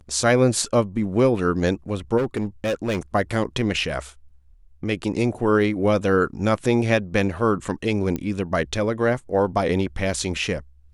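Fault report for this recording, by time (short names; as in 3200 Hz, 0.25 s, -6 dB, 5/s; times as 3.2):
2.17–2.99 clipped -19 dBFS
8.16 pop -14 dBFS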